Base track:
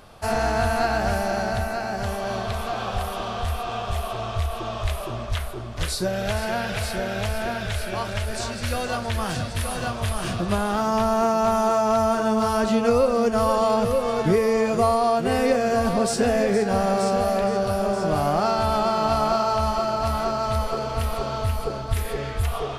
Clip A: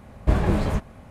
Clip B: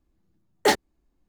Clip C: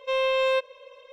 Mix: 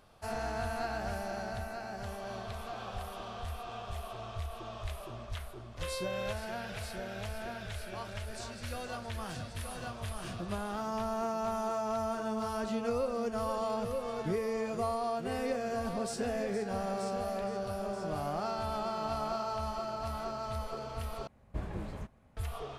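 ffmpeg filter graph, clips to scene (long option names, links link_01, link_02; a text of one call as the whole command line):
ffmpeg -i bed.wav -i cue0.wav -i cue1.wav -i cue2.wav -filter_complex "[0:a]volume=-13.5dB,asplit=2[link_01][link_02];[link_01]atrim=end=21.274[link_03];[1:a]atrim=end=1.1,asetpts=PTS-STARTPTS,volume=-18dB[link_04];[link_02]atrim=start=22.366[link_05];[3:a]atrim=end=1.12,asetpts=PTS-STARTPTS,volume=-15.5dB,afade=type=in:duration=0.004:curve=hsin,afade=type=out:start_time=1.116:duration=0.004:curve=hsin,adelay=252693S[link_06];[link_03][link_04]acrossfade=duration=0.004:curve1=hsin:curve2=hsin[link_07];[link_07][link_05]acrossfade=duration=0.004:curve1=hsin:curve2=hsin[link_08];[link_08][link_06]amix=inputs=2:normalize=0" out.wav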